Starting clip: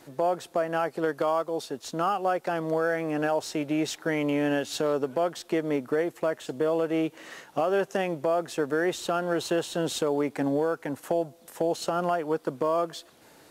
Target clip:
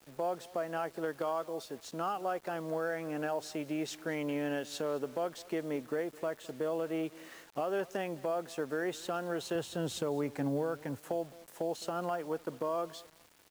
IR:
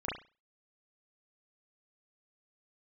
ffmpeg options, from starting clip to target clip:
-filter_complex "[0:a]asettb=1/sr,asplit=3[a][b][c];[a]atrim=end=9.554[d];[b]atrim=start=9.55:end=10.98,asetpts=PTS-STARTPTS,afade=t=in:d=0.004:c=qsin,afade=t=out:st=1.426:d=0.004:c=qsin,equalizer=f=95:t=o:w=1.3:g=13[e];[c]atrim=start=10.976[f];[d][e]acrossfade=d=0.004:c1=hsin:c2=qsin[g];[g][f]acrossfade=d=0.004:c1=qsin:c2=hsin,aecho=1:1:212|424:0.0891|0.0267,acrusher=bits=7:mix=0:aa=0.000001,volume=-8.5dB"

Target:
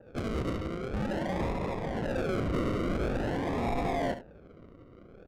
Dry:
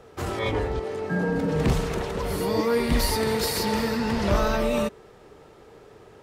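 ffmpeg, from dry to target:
-filter_complex "[0:a]tiltshelf=f=890:g=-7.5,asoftclip=type=tanh:threshold=-26dB,asetrate=52038,aresample=44100,acrusher=samples=41:mix=1:aa=0.000001:lfo=1:lforange=24.6:lforate=0.47,adynamicsmooth=sensitivity=5:basefreq=1.3k,asplit=2[a][b];[b]aecho=0:1:72:0.266[c];[a][c]amix=inputs=2:normalize=0,adynamicequalizer=threshold=0.00282:dfrequency=3100:dqfactor=0.7:tfrequency=3100:tqfactor=0.7:attack=5:release=100:ratio=0.375:range=4:mode=cutabove:tftype=highshelf"

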